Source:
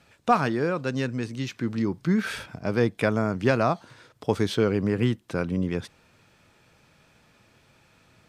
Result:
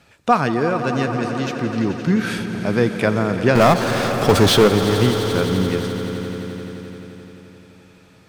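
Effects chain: 3.55–4.68 s: power-law waveshaper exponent 0.5; echo with a slow build-up 86 ms, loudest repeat 5, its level -14 dB; trim +5 dB

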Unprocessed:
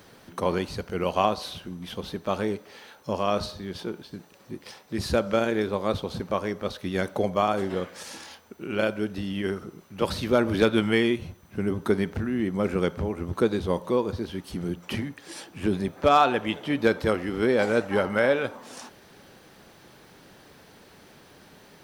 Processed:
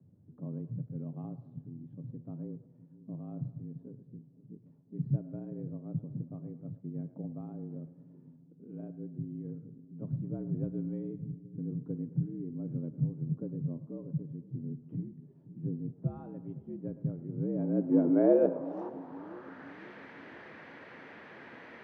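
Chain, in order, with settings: frequency shift +69 Hz; low-pass sweep 120 Hz -> 2 kHz, 17.22–19.81 s; two-band feedback delay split 390 Hz, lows 514 ms, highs 109 ms, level -15 dB

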